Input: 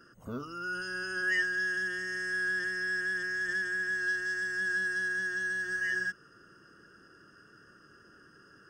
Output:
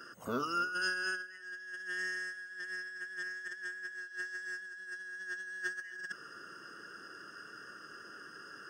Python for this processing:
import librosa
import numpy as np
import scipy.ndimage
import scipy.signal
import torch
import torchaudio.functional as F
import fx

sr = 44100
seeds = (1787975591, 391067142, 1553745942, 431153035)

p1 = fx.highpass(x, sr, hz=630.0, slope=6)
p2 = fx.over_compress(p1, sr, threshold_db=-40.0, ratio=-0.5)
p3 = p2 + fx.echo_single(p2, sr, ms=265, db=-20.0, dry=0)
y = F.gain(torch.from_numpy(p3), 1.5).numpy()